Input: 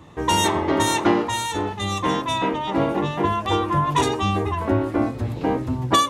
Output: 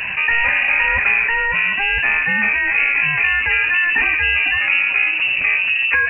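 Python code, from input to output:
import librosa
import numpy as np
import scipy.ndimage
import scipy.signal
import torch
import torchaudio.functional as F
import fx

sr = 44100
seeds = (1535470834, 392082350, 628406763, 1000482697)

y = scipy.signal.sosfilt(scipy.signal.butter(2, 80.0, 'highpass', fs=sr, output='sos'), x)
y = fx.freq_invert(y, sr, carrier_hz=2800)
y = fx.env_flatten(y, sr, amount_pct=70)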